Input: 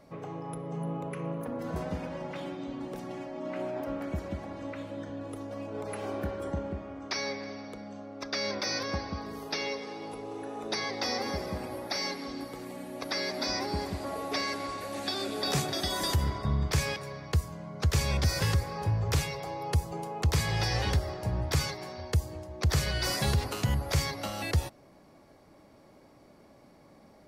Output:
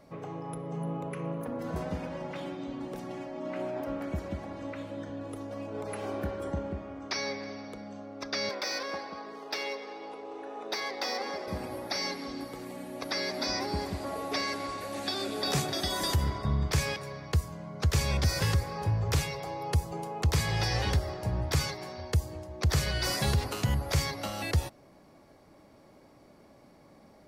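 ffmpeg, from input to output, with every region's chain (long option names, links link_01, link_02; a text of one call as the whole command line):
ffmpeg -i in.wav -filter_complex "[0:a]asettb=1/sr,asplit=3[link_01][link_02][link_03];[link_01]atrim=end=8.494[link_04];[link_02]atrim=start=8.49:end=11.48,asetpts=PTS-STARTPTS,afade=type=in:duration=0.004:curve=qsin,afade=type=out:start_time=2.986:duration=0.004:curve=qsin,highpass=380,adynamicsmooth=sensitivity=5.5:basefreq=4800[link_05];[link_03]atrim=start=11.476[link_06];[link_04][link_05]acrossfade=duration=0.004:curve1=hsin:curve2=qsin[link_07];[link_07][link_06]acrossfade=duration=0.004:curve1=qsin:curve2=hsin" out.wav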